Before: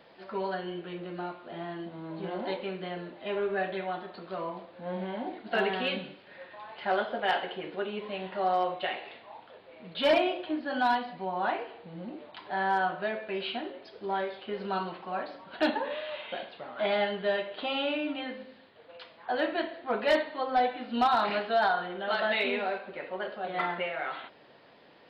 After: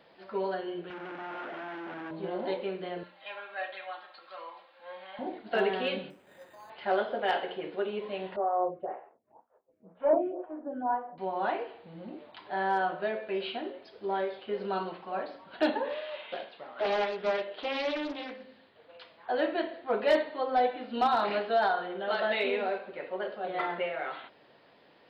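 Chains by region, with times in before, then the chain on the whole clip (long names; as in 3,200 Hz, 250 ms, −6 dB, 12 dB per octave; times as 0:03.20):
0:00.90–0:02.11: sign of each sample alone + loudspeaker in its box 240–2,900 Hz, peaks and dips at 280 Hz +5 dB, 440 Hz −5 dB, 850 Hz +5 dB, 1,500 Hz +9 dB
0:03.03–0:05.19: high-pass filter 970 Hz + comb filter 3.7 ms, depth 63%
0:06.10–0:06.70: bad sample-rate conversion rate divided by 8×, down none, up hold + high-shelf EQ 2,100 Hz −11.5 dB
0:08.36–0:11.18: low-pass filter 1,300 Hz 24 dB per octave + downward expander −44 dBFS + phaser with staggered stages 2 Hz
0:15.89–0:18.44: low-shelf EQ 160 Hz −11 dB + highs frequency-modulated by the lows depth 0.42 ms
whole clip: mains-hum notches 60/120/180/240 Hz; dynamic equaliser 450 Hz, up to +6 dB, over −43 dBFS, Q 1.2; level −3 dB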